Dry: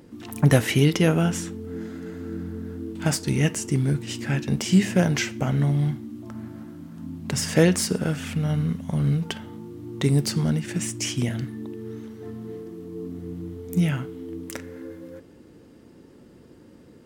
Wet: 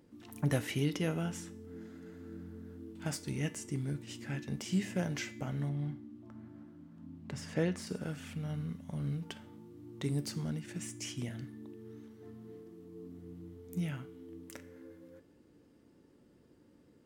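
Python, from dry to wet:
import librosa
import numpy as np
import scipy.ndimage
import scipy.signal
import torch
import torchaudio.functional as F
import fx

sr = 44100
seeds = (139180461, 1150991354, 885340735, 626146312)

y = fx.lowpass(x, sr, hz=2700.0, slope=6, at=(5.69, 7.87))
y = fx.comb_fb(y, sr, f0_hz=290.0, decay_s=0.56, harmonics='all', damping=0.0, mix_pct=60)
y = F.gain(torch.from_numpy(y), -6.5).numpy()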